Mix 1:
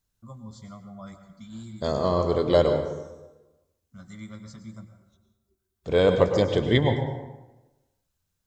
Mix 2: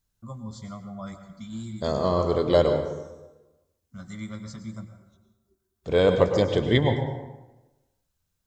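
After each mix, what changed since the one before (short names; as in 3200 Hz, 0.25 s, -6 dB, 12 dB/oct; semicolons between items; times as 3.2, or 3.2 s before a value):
first voice +4.5 dB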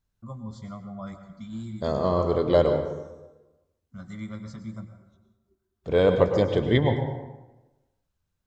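master: add high shelf 4400 Hz -11 dB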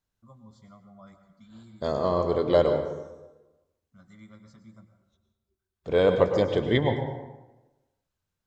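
first voice -10.5 dB; master: add low shelf 190 Hz -6 dB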